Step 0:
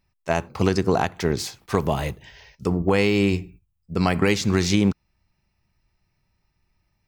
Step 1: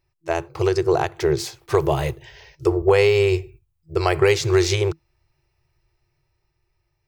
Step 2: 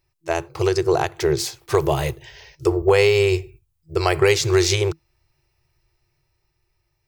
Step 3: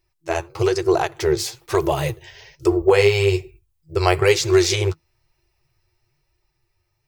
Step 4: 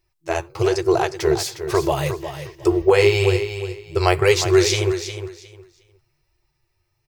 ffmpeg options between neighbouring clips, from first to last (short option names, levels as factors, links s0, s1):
-af "afftfilt=real='re*(1-between(b*sr/4096,160,330))':imag='im*(1-between(b*sr/4096,160,330))':win_size=4096:overlap=0.75,equalizer=f=270:w=1.5:g=14,dynaudnorm=f=240:g=11:m=2,volume=0.794"
-af "highshelf=f=3600:g=6"
-af "flanger=delay=2.8:depth=8.3:regen=21:speed=1.1:shape=sinusoidal,volume=1.5"
-af "aecho=1:1:359|718|1077:0.316|0.0664|0.0139"